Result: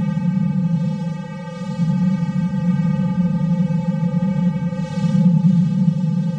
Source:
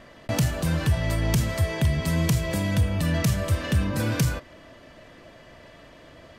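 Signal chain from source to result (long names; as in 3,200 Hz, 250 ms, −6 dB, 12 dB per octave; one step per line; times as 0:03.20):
hard clipping −21 dBFS, distortion −12 dB
channel vocoder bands 4, square 173 Hz
extreme stretch with random phases 14×, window 0.05 s, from 0:01.94
level +7.5 dB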